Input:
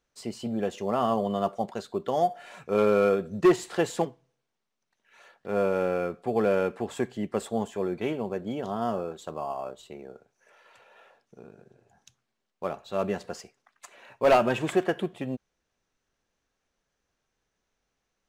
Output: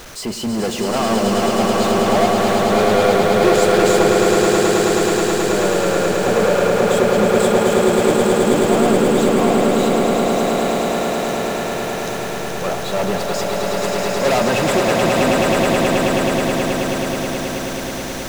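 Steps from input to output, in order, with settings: jump at every zero crossing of -39 dBFS; waveshaping leveller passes 3; echo with a slow build-up 107 ms, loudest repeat 8, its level -5 dB; trim -1 dB

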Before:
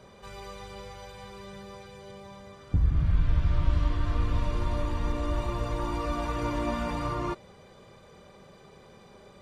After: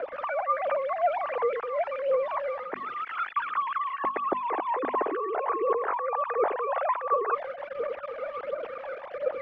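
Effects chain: formants replaced by sine waves; in parallel at -4 dB: bit crusher 7-bit; on the sum: hum notches 50/100/150/200/250 Hz; reverse; compression 20:1, threshold -31 dBFS, peak gain reduction 19.5 dB; reverse; three-band isolator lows -17 dB, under 280 Hz, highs -16 dB, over 2.1 kHz; phaser 1.4 Hz, delay 1.5 ms, feedback 53%; distance through air 290 m; endings held to a fixed fall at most 370 dB/s; trim +8 dB

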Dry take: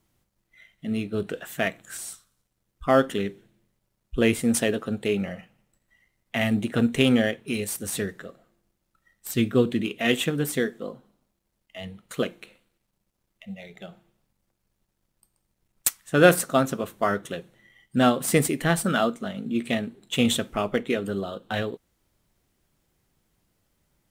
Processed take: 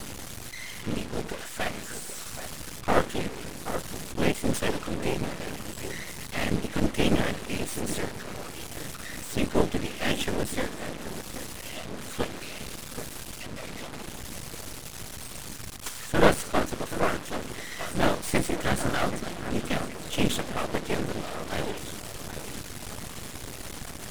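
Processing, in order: one-bit delta coder 64 kbps, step -28.5 dBFS; whisper effect; echo whose repeats swap between lows and highs 778 ms, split 1.9 kHz, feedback 57%, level -10 dB; half-wave rectifier

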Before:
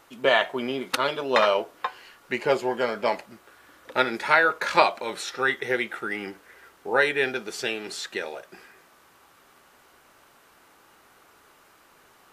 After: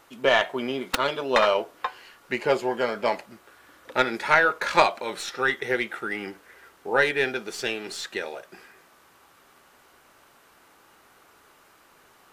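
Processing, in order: tracing distortion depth 0.051 ms

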